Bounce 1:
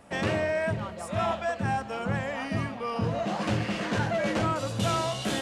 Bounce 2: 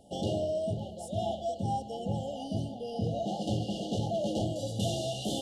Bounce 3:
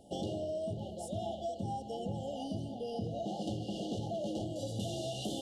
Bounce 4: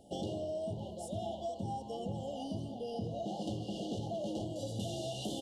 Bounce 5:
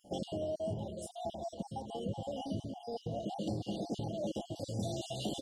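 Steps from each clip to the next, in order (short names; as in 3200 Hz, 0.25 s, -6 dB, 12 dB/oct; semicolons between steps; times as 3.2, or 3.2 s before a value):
FFT band-reject 860–2800 Hz; gain -3 dB
bell 340 Hz +4.5 dB 0.51 oct; compressor, threshold -33 dBFS, peak gain reduction 8 dB; gain -1 dB
frequency-shifting echo 83 ms, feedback 49%, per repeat +120 Hz, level -23.5 dB; gain -1 dB
random spectral dropouts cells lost 34%; gain +2 dB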